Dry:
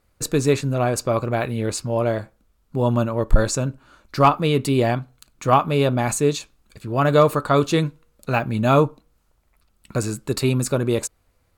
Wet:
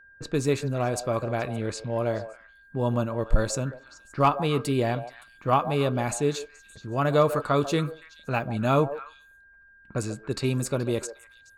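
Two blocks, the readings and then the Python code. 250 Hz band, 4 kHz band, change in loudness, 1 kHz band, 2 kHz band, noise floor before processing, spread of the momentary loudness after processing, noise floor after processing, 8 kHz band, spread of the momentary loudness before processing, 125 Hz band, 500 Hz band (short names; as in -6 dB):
-6.0 dB, -6.0 dB, -6.0 dB, -5.5 dB, -5.5 dB, -65 dBFS, 13 LU, -55 dBFS, -7.5 dB, 11 LU, -6.0 dB, -5.5 dB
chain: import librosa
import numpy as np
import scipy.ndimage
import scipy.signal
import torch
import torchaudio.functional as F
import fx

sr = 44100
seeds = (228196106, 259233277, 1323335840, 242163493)

y = fx.env_lowpass(x, sr, base_hz=1200.0, full_db=-17.0)
y = y + 10.0 ** (-45.0 / 20.0) * np.sin(2.0 * np.pi * 1600.0 * np.arange(len(y)) / sr)
y = fx.echo_stepped(y, sr, ms=142, hz=620.0, octaves=1.4, feedback_pct=70, wet_db=-9)
y = y * librosa.db_to_amplitude(-6.0)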